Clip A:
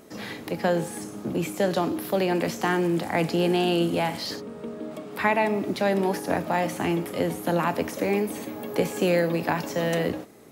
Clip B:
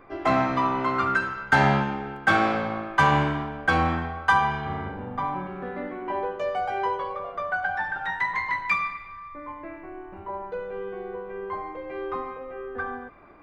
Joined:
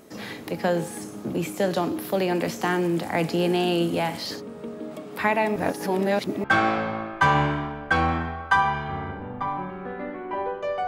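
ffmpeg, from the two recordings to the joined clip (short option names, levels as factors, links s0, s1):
-filter_complex "[0:a]apad=whole_dur=10.87,atrim=end=10.87,asplit=2[s0][s1];[s0]atrim=end=5.562[s2];[s1]atrim=start=5.558:end=6.442,asetpts=PTS-STARTPTS,areverse[s3];[1:a]atrim=start=2.208:end=6.64[s4];[s2][s3]acrossfade=d=0.004:c1=hsin:c2=hsin[s5];[s5][s4]acrossfade=d=0.004:c1=hsin:c2=hsin"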